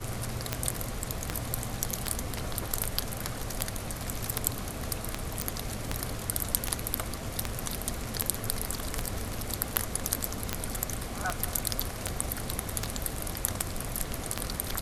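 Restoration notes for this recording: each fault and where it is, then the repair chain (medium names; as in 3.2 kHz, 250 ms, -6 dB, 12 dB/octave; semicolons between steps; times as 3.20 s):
tick 78 rpm -10 dBFS
5.42 s: pop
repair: de-click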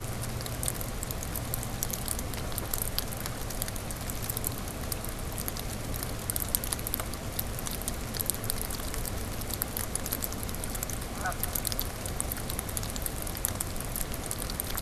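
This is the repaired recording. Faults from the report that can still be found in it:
nothing left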